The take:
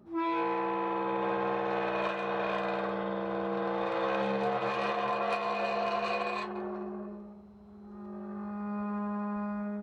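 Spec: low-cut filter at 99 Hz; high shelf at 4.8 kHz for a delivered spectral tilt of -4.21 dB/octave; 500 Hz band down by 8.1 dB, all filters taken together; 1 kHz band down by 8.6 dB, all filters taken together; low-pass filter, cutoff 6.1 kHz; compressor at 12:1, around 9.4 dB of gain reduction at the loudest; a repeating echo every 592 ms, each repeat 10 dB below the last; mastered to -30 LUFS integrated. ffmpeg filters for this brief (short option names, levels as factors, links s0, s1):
-af "highpass=99,lowpass=6100,equalizer=f=500:t=o:g=-7.5,equalizer=f=1000:t=o:g=-8.5,highshelf=f=4800:g=4,acompressor=threshold=0.00794:ratio=12,aecho=1:1:592|1184|1776|2368:0.316|0.101|0.0324|0.0104,volume=5.62"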